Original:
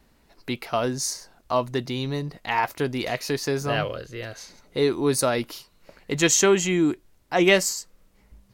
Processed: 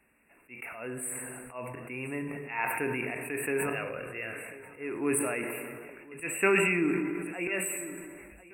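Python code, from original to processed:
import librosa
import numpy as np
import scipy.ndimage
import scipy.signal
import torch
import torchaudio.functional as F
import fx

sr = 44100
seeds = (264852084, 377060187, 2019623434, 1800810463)

y = fx.weighting(x, sr, curve='D')
y = fx.auto_swell(y, sr, attack_ms=262.0)
y = fx.brickwall_bandstop(y, sr, low_hz=2800.0, high_hz=7700.0)
y = fx.echo_feedback(y, sr, ms=1039, feedback_pct=31, wet_db=-21.0)
y = fx.rev_plate(y, sr, seeds[0], rt60_s=1.6, hf_ratio=0.55, predelay_ms=0, drr_db=7.0)
y = fx.sustainer(y, sr, db_per_s=27.0)
y = F.gain(torch.from_numpy(y), -7.5).numpy()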